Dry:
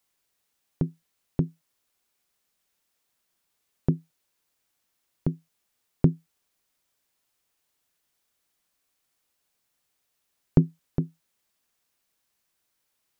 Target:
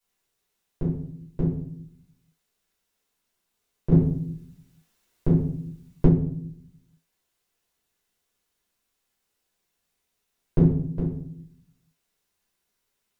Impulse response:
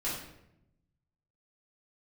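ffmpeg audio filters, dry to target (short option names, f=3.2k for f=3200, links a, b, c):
-filter_complex "[1:a]atrim=start_sample=2205,asetrate=61740,aresample=44100[a];[0:a][a]afir=irnorm=-1:irlink=0,asplit=3[b][c][d];[b]afade=t=out:st=3.91:d=0.02[e];[c]acontrast=76,afade=t=in:st=3.91:d=0.02,afade=t=out:st=6.07:d=0.02[f];[d]afade=t=in:st=6.07:d=0.02[g];[e][f][g]amix=inputs=3:normalize=0,volume=-2dB"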